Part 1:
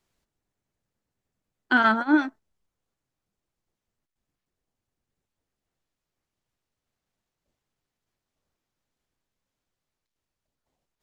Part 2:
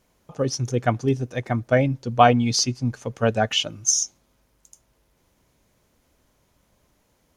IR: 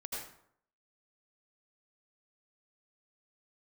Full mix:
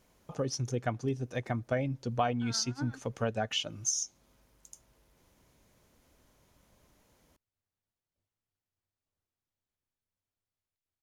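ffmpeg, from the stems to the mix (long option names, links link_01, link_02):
-filter_complex "[0:a]equalizer=frequency=93:width=4.1:gain=13,adelay=700,volume=-11.5dB[link_01];[1:a]volume=-1.5dB,asplit=2[link_02][link_03];[link_03]apad=whole_len=516993[link_04];[link_01][link_04]sidechaincompress=threshold=-33dB:ratio=3:attack=16:release=107[link_05];[link_05][link_02]amix=inputs=2:normalize=0,acompressor=threshold=-33dB:ratio=2.5"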